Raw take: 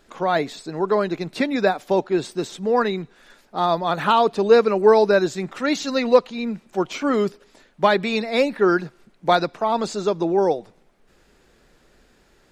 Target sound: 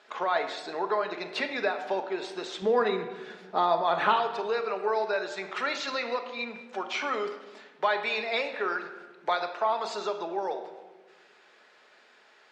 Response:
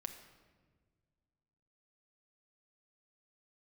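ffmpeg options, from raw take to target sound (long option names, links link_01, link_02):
-filter_complex "[0:a]acompressor=threshold=-27dB:ratio=3,asetnsamples=nb_out_samples=441:pad=0,asendcmd='2.62 highpass f 380;4.16 highpass f 760',highpass=640,lowpass=4000[link_01];[1:a]atrim=start_sample=2205,asetrate=52920,aresample=44100[link_02];[link_01][link_02]afir=irnorm=-1:irlink=0,volume=9dB"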